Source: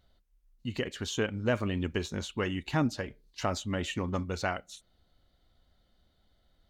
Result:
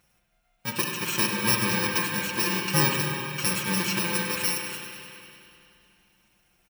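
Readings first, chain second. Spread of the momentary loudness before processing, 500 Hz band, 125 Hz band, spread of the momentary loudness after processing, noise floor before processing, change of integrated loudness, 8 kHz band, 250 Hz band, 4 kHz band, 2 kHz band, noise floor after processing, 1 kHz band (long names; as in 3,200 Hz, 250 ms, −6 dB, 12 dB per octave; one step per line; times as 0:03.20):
10 LU, 0.0 dB, +2.5 dB, 12 LU, −71 dBFS, +8.0 dB, +15.5 dB, +2.5 dB, +11.0 dB, +10.0 dB, −69 dBFS, +7.0 dB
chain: samples in bit-reversed order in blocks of 64 samples
high-pass filter 61 Hz
parametric band 2,000 Hz +10 dB 2.7 octaves
mains-hum notches 50/100 Hz
comb filter 5.7 ms, depth 88%
delay with a high-pass on its return 98 ms, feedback 73%, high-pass 1,700 Hz, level −10.5 dB
spring reverb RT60 2.7 s, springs 47/59 ms, chirp 30 ms, DRR 1 dB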